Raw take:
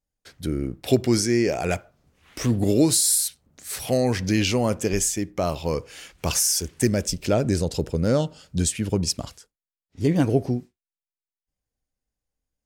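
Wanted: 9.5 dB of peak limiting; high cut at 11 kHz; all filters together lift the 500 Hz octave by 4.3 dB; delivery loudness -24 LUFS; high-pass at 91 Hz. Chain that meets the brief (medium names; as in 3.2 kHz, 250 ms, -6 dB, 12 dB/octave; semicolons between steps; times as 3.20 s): high-pass 91 Hz; low-pass 11 kHz; peaking EQ 500 Hz +5.5 dB; peak limiter -12 dBFS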